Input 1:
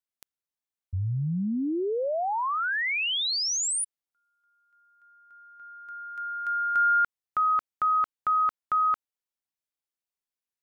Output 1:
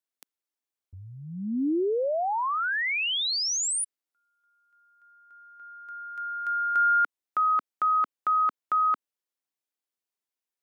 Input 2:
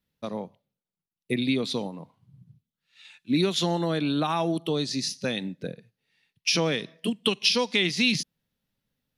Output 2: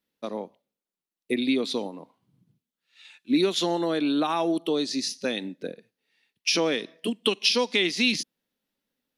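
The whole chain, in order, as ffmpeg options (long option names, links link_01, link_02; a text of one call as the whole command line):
ffmpeg -i in.wav -af "lowshelf=frequency=190:width_type=q:width=1.5:gain=-12.5" out.wav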